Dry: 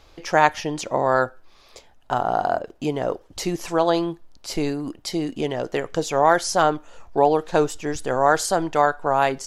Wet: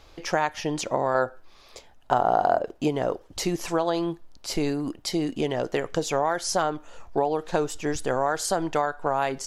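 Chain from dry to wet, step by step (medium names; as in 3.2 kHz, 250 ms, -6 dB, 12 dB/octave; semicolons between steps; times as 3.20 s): compression 6:1, threshold -20 dBFS, peak gain reduction 10 dB; 1.14–2.88 s: dynamic bell 580 Hz, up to +5 dB, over -37 dBFS, Q 0.75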